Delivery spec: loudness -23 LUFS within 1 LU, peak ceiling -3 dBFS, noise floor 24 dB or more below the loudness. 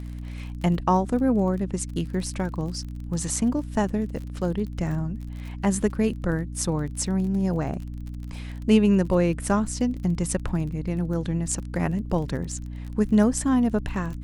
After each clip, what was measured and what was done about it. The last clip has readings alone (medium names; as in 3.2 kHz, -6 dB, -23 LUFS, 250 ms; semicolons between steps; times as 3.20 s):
tick rate 30 per s; hum 60 Hz; highest harmonic 300 Hz; hum level -32 dBFS; loudness -25.5 LUFS; peak level -7.0 dBFS; loudness target -23.0 LUFS
-> de-click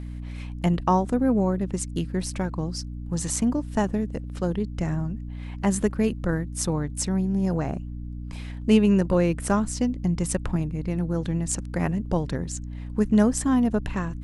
tick rate 0 per s; hum 60 Hz; highest harmonic 300 Hz; hum level -32 dBFS
-> de-hum 60 Hz, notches 5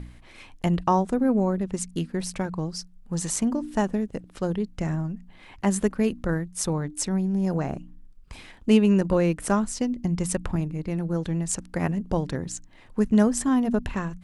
hum not found; loudness -26.0 LUFS; peak level -7.0 dBFS; loudness target -23.0 LUFS
-> trim +3 dB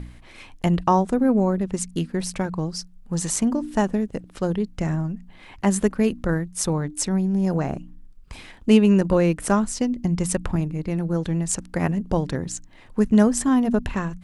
loudness -23.0 LUFS; peak level -4.0 dBFS; noise floor -47 dBFS